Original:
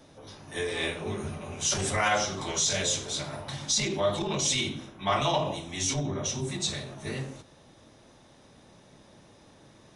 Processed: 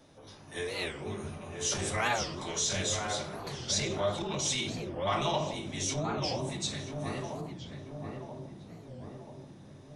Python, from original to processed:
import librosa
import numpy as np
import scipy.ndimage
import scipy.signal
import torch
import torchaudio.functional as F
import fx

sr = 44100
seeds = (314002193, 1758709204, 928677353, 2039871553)

p1 = x + fx.echo_filtered(x, sr, ms=984, feedback_pct=63, hz=1100.0, wet_db=-3.5, dry=0)
p2 = fx.record_warp(p1, sr, rpm=45.0, depth_cents=250.0)
y = p2 * 10.0 ** (-4.5 / 20.0)